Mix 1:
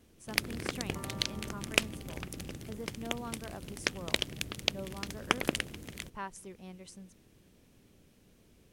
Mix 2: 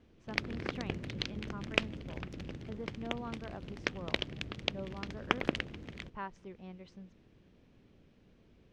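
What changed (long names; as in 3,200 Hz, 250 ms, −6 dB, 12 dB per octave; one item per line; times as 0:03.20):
speech: add low-pass filter 5,700 Hz 12 dB per octave
second sound: muted
master: add high-frequency loss of the air 200 metres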